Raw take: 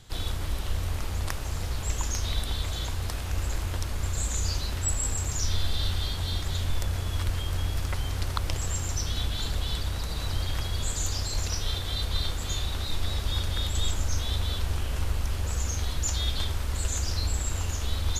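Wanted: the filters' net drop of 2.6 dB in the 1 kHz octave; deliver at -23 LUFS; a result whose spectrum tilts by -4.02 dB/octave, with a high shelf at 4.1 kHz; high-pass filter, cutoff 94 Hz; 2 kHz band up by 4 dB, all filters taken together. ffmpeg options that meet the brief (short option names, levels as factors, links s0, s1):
-af "highpass=94,equalizer=f=1000:t=o:g=-5.5,equalizer=f=2000:t=o:g=7.5,highshelf=f=4100:g=-4,volume=3.16"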